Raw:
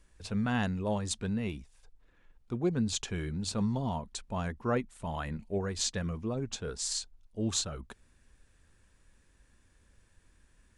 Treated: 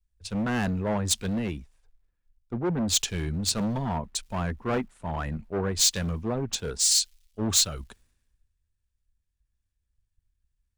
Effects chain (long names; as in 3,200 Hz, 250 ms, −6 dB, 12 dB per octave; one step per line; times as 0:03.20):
surface crackle 550 per second −61 dBFS
hard clipping −32 dBFS, distortion −8 dB
multiband upward and downward expander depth 100%
level +6.5 dB